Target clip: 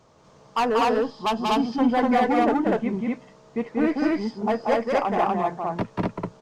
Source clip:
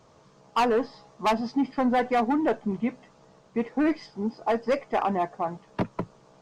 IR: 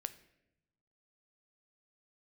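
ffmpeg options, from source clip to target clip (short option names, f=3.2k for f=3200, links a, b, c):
-filter_complex "[0:a]asettb=1/sr,asplit=3[a][b][c];[a]atrim=end=0.774[d];[b]atrim=start=0.77:end=1.81,asetpts=PTS-STARTPTS,afade=t=in:d=0.004:c=qsin,afade=t=out:st=1.036:d=0.004:c=qsin,equalizer=f=630:t=o:w=0.33:g=-4,equalizer=f=2k:t=o:w=0.33:g=-10,equalizer=f=3.15k:t=o:w=0.33:g=7[e];[c]atrim=start=1.806[f];[d][e]acrossfade=d=0.004:c1=hsin:c2=qsin[g];[g][f]acrossfade=d=0.004:c1=qsin:c2=hsin,aecho=1:1:186.6|244.9:0.708|1"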